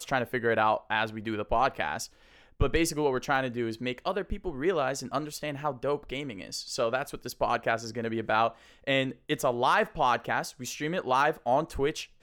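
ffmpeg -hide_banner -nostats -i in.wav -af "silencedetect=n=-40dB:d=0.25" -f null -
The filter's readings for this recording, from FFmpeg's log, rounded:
silence_start: 2.06
silence_end: 2.60 | silence_duration: 0.54
silence_start: 8.51
silence_end: 8.87 | silence_duration: 0.36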